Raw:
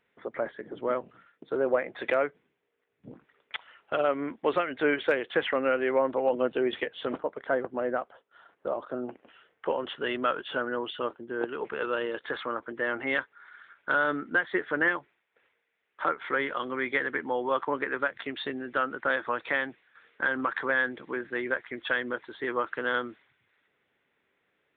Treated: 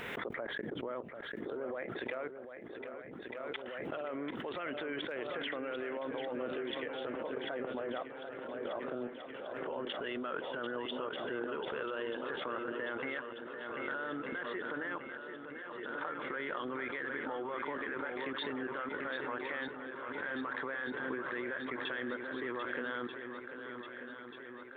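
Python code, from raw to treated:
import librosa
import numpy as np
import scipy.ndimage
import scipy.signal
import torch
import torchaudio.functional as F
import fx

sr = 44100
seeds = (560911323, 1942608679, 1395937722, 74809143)

y = fx.level_steps(x, sr, step_db=19)
y = fx.echo_swing(y, sr, ms=1237, ratio=1.5, feedback_pct=61, wet_db=-9.0)
y = fx.pre_swell(y, sr, db_per_s=21.0)
y = F.gain(torch.from_numpy(y), -1.5).numpy()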